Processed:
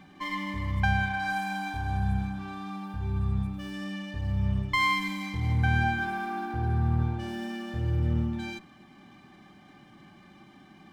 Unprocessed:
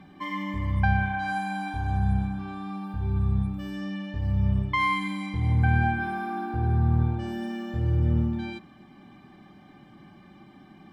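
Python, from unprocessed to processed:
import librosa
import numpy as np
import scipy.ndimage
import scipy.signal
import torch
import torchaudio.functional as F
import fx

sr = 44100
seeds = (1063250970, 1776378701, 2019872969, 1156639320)

y = fx.tilt_shelf(x, sr, db=-3.5, hz=1200.0)
y = fx.running_max(y, sr, window=3)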